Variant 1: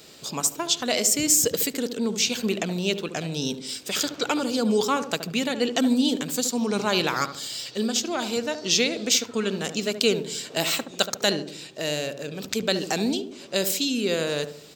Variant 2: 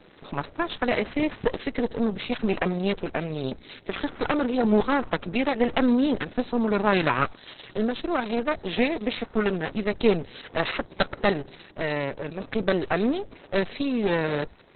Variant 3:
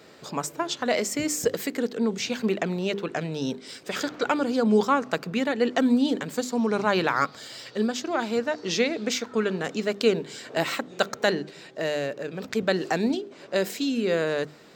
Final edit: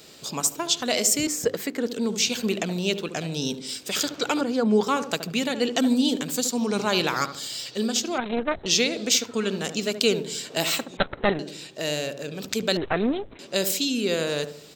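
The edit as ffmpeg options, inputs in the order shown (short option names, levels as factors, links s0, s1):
-filter_complex "[2:a]asplit=2[s0][s1];[1:a]asplit=3[s2][s3][s4];[0:a]asplit=6[s5][s6][s7][s8][s9][s10];[s5]atrim=end=1.272[s11];[s0]atrim=start=1.268:end=1.872[s12];[s6]atrim=start=1.868:end=4.412[s13];[s1]atrim=start=4.408:end=4.872[s14];[s7]atrim=start=4.868:end=8.182[s15];[s2]atrim=start=8.178:end=8.662[s16];[s8]atrim=start=8.658:end=10.972[s17];[s3]atrim=start=10.968:end=11.392[s18];[s9]atrim=start=11.388:end=12.772[s19];[s4]atrim=start=12.768:end=13.392[s20];[s10]atrim=start=13.388[s21];[s11][s12]acrossfade=d=0.004:c1=hsin:c2=hsin[s22];[s22][s13]acrossfade=d=0.004:c1=hsin:c2=hsin[s23];[s23][s14]acrossfade=d=0.004:c1=hsin:c2=hsin[s24];[s24][s15]acrossfade=d=0.004:c1=hsin:c2=hsin[s25];[s25][s16]acrossfade=d=0.004:c1=hsin:c2=hsin[s26];[s26][s17]acrossfade=d=0.004:c1=hsin:c2=hsin[s27];[s27][s18]acrossfade=d=0.004:c1=hsin:c2=hsin[s28];[s28][s19]acrossfade=d=0.004:c1=hsin:c2=hsin[s29];[s29][s20]acrossfade=d=0.004:c1=hsin:c2=hsin[s30];[s30][s21]acrossfade=d=0.004:c1=hsin:c2=hsin"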